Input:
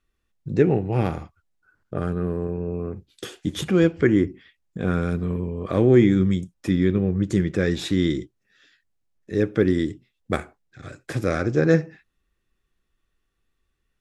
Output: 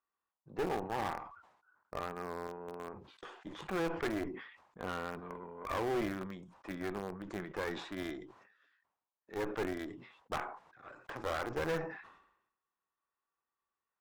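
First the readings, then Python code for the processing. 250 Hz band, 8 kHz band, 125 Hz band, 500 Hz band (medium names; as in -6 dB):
-20.0 dB, -13.0 dB, -24.5 dB, -15.5 dB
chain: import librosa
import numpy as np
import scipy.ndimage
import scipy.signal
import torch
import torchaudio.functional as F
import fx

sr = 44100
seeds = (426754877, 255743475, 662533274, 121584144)

p1 = fx.lowpass_res(x, sr, hz=980.0, q=3.4)
p2 = np.diff(p1, prepend=0.0)
p3 = np.where(np.abs(p2) >= 10.0 ** (-42.5 / 20.0), p2, 0.0)
p4 = p2 + (p3 * 10.0 ** (-7.0 / 20.0))
p5 = fx.tube_stage(p4, sr, drive_db=41.0, bias=0.75)
p6 = fx.sustainer(p5, sr, db_per_s=72.0)
y = p6 * 10.0 ** (11.0 / 20.0)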